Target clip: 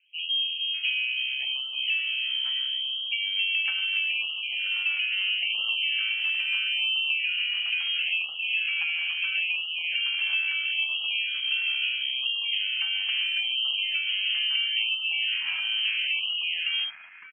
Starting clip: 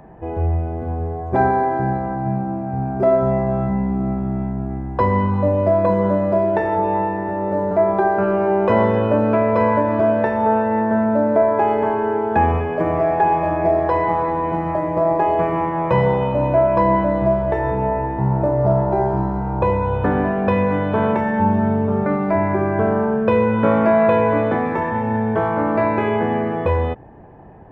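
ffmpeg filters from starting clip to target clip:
-filter_complex "[0:a]atempo=1.6,afwtdn=0.0562,highshelf=f=2k:g=4,acompressor=threshold=-17dB:ratio=20,aeval=exprs='clip(val(0),-1,0.15)':c=same,acrossover=split=210|1300[a][b][c];[a]adelay=50[d];[c]adelay=560[e];[d][b][e]amix=inputs=3:normalize=0,lowpass=f=2.8k:t=q:w=0.5098,lowpass=f=2.8k:t=q:w=0.6013,lowpass=f=2.8k:t=q:w=0.9,lowpass=f=2.8k:t=q:w=2.563,afreqshift=-3300,afftfilt=real='re*(1-between(b*sr/1024,400*pow(1900/400,0.5+0.5*sin(2*PI*0.75*pts/sr))/1.41,400*pow(1900/400,0.5+0.5*sin(2*PI*0.75*pts/sr))*1.41))':imag='im*(1-between(b*sr/1024,400*pow(1900/400,0.5+0.5*sin(2*PI*0.75*pts/sr))/1.41,400*pow(1900/400,0.5+0.5*sin(2*PI*0.75*pts/sr))*1.41))':win_size=1024:overlap=0.75,volume=-5dB"

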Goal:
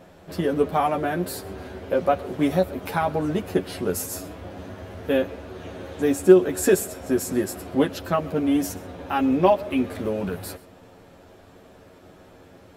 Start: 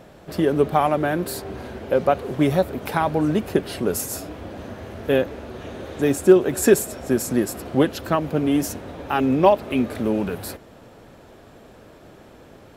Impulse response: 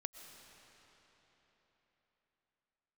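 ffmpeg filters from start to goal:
-filter_complex "[0:a]asplit=2[a][b];[1:a]atrim=start_sample=2205,afade=t=out:st=0.18:d=0.01,atrim=end_sample=8379,adelay=11[c];[b][c]afir=irnorm=-1:irlink=0,volume=1dB[d];[a][d]amix=inputs=2:normalize=0,volume=-4.5dB"

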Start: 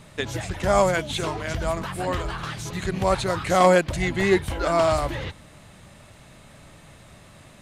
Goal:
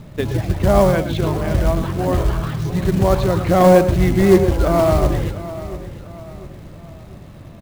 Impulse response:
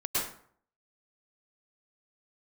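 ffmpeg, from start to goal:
-filter_complex "[0:a]lowpass=f=5.5k:w=0.5412,lowpass=f=5.5k:w=1.3066,tiltshelf=f=720:g=8,acontrast=35,acrusher=bits=5:mode=log:mix=0:aa=0.000001,aecho=1:1:697|1394|2091|2788:0.178|0.0729|0.0299|0.0123,asplit=2[a][b];[1:a]atrim=start_sample=2205,afade=t=out:st=0.19:d=0.01,atrim=end_sample=8820[c];[b][c]afir=irnorm=-1:irlink=0,volume=-15dB[d];[a][d]amix=inputs=2:normalize=0,volume=-2.5dB"

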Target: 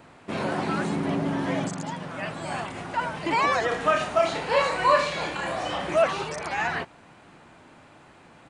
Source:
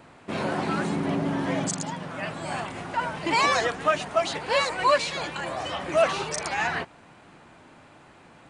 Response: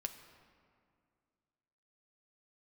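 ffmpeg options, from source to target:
-filter_complex "[0:a]acrossover=split=2500[a][b];[b]acompressor=threshold=-37dB:ratio=4:attack=1:release=60[c];[a][c]amix=inputs=2:normalize=0,asplit=3[d][e][f];[d]afade=t=out:st=3.7:d=0.02[g];[e]aecho=1:1:30|63|99.3|139.2|183.2:0.631|0.398|0.251|0.158|0.1,afade=t=in:st=3.7:d=0.02,afade=t=out:st=5.94:d=0.02[h];[f]afade=t=in:st=5.94:d=0.02[i];[g][h][i]amix=inputs=3:normalize=0"

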